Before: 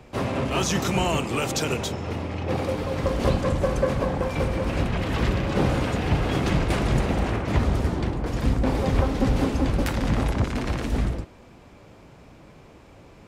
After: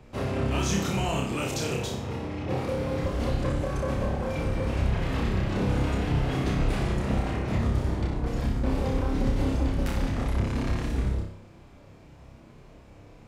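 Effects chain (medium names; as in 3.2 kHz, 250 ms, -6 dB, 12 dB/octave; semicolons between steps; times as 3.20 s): bass shelf 150 Hz +6.5 dB; peak limiter -12.5 dBFS, peak gain reduction 7.5 dB; on a send: flutter echo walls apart 5.2 m, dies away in 0.54 s; on the sum: trim -7 dB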